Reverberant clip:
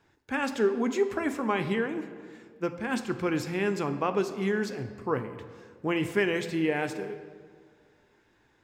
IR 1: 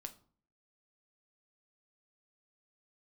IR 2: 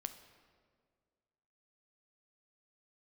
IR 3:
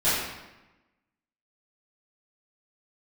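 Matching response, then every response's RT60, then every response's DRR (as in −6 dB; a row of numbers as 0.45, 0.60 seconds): 2; 0.45, 1.9, 1.0 seconds; 7.0, 8.5, −15.5 decibels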